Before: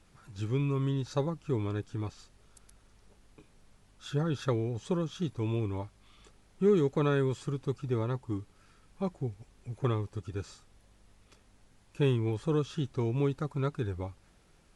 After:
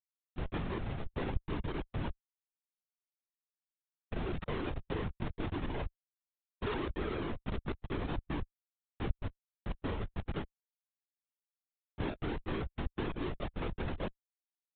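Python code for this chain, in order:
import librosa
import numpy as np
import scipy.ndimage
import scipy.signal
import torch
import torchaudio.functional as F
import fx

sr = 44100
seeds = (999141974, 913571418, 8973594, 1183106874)

y = fx.level_steps(x, sr, step_db=21)
y = fx.highpass(y, sr, hz=290.0, slope=6)
y = fx.schmitt(y, sr, flips_db=-46.0)
y = fx.dereverb_blind(y, sr, rt60_s=0.76)
y = fx.lpc_vocoder(y, sr, seeds[0], excitation='whisper', order=16)
y = F.gain(torch.from_numpy(y), 16.5).numpy()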